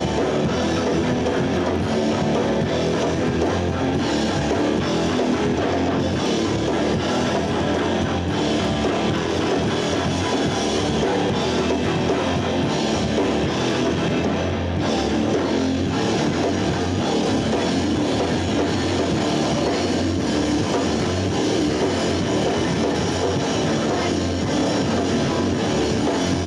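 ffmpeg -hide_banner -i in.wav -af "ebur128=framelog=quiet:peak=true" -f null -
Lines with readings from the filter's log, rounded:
Integrated loudness:
  I:         -21.0 LUFS
  Threshold: -31.0 LUFS
Loudness range:
  LRA:         0.3 LU
  Threshold: -41.0 LUFS
  LRA low:   -21.2 LUFS
  LRA high:  -20.9 LUFS
True peak:
  Peak:       -7.9 dBFS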